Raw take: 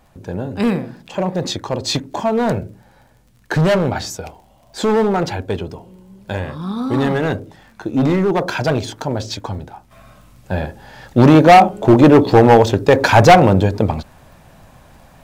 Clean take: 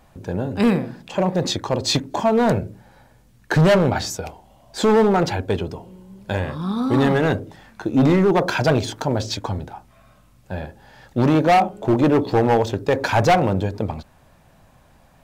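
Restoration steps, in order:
click removal
level 0 dB, from 0:09.91 −8 dB

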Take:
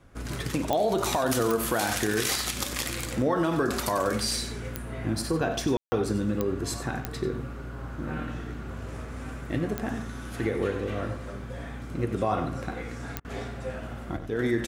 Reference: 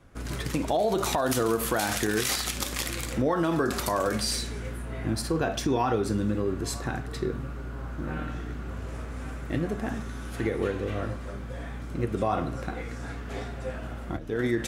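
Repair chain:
click removal
ambience match 0:05.77–0:05.92
repair the gap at 0:13.20, 45 ms
echo removal 93 ms −11 dB

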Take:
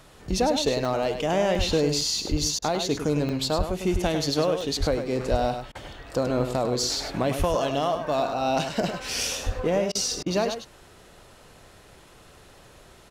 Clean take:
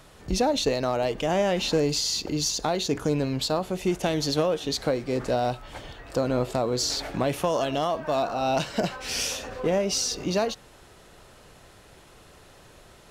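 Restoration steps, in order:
high-pass at the plosives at 0:01.57/0:02.30/0:03.57/0:03.92/0:04.79/0:05.30/0:07.38/0:09.45
repair the gap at 0:00.85/0:01.55/0:02.01/0:03.29/0:04.61/0:05.54, 3.1 ms
repair the gap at 0:02.59/0:05.72/0:09.92/0:10.23, 30 ms
echo removal 102 ms −8 dB

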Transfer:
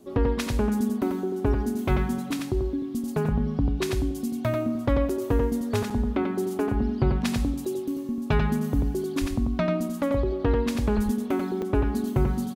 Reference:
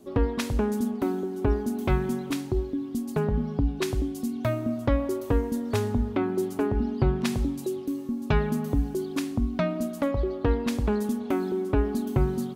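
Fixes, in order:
high-pass at the plosives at 0:09.20/0:10.95
repair the gap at 0:05.09/0:05.90/0:07.65/0:11.62, 4.6 ms
echo removal 90 ms −4.5 dB

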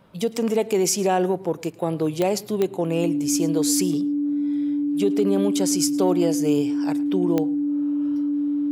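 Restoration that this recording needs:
click removal
notch filter 290 Hz, Q 30
echo removal 109 ms −21.5 dB

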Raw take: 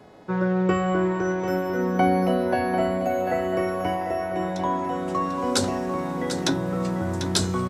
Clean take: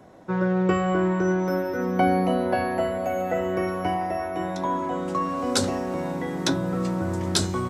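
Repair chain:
hum removal 423.5 Hz, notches 12
echo removal 744 ms −9 dB

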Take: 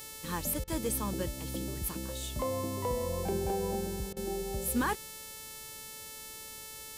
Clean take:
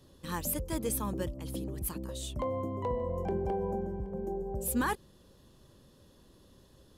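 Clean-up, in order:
hum removal 439.2 Hz, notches 35
notch filter 560 Hz, Q 30
repair the gap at 0:00.64/0:04.13, 35 ms

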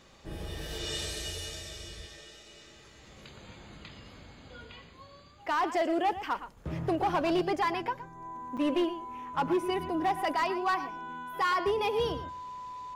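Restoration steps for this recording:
clipped peaks rebuilt −22.5 dBFS
notch filter 1,000 Hz, Q 30
repair the gap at 0:08.57, 6 ms
echo removal 116 ms −13 dB

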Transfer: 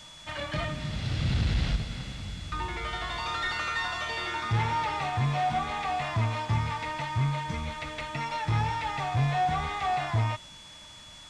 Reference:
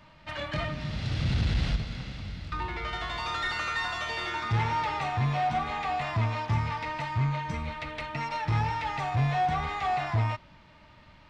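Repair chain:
notch filter 3,400 Hz, Q 30
noise reduction from a noise print 6 dB

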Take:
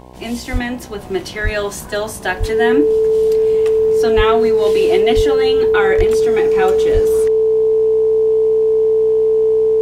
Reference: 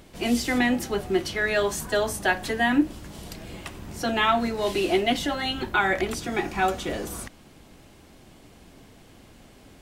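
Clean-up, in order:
hum removal 62.6 Hz, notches 17
notch filter 440 Hz, Q 30
high-pass at the plosives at 0:00.52/0:01.43/0:02.39/0:04.16/0:05.15/0:05.97/0:06.93
level 0 dB, from 0:01.01 −3.5 dB

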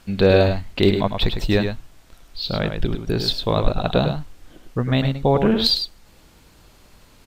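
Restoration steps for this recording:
clipped peaks rebuilt −5.5 dBFS
echo removal 103 ms −7 dB

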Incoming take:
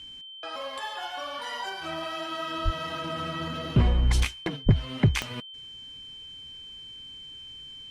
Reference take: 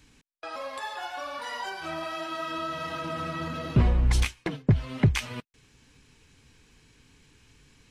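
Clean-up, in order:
click removal
notch filter 3,100 Hz, Q 30
0:02.64–0:02.76: high-pass filter 140 Hz 24 dB per octave
0:04.65–0:04.77: high-pass filter 140 Hz 24 dB per octave

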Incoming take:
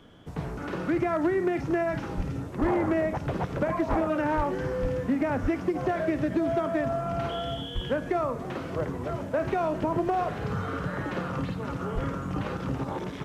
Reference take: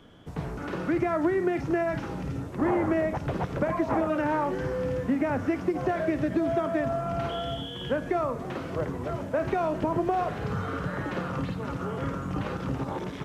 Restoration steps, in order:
clipped peaks rebuilt −18.5 dBFS
high-pass at the plosives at 0:02.16/0:02.60/0:03.89/0:04.36/0:04.81/0:05.42/0:07.74/0:11.94

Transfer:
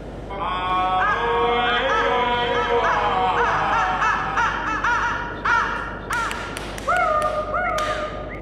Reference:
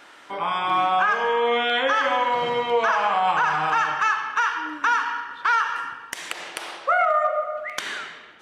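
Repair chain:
hum removal 50.2 Hz, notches 4
noise reduction from a noise print 9 dB
echo removal 652 ms −4 dB

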